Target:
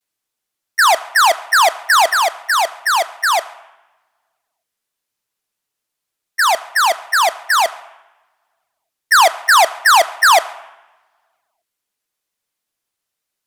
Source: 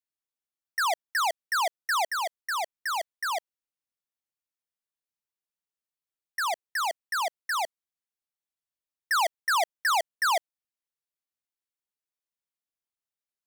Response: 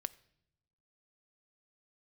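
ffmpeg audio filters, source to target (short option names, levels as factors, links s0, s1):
-filter_complex "[0:a]asplit=2[s0][s1];[s1]lowshelf=f=170:g=-3.5[s2];[1:a]atrim=start_sample=2205,asetrate=26901,aresample=44100,adelay=9[s3];[s2][s3]afir=irnorm=-1:irlink=0,volume=5.01[s4];[s0][s4]amix=inputs=2:normalize=0"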